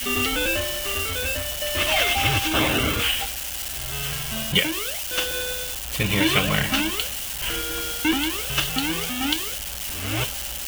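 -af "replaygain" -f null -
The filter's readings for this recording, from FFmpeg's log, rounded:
track_gain = +2.4 dB
track_peak = 0.346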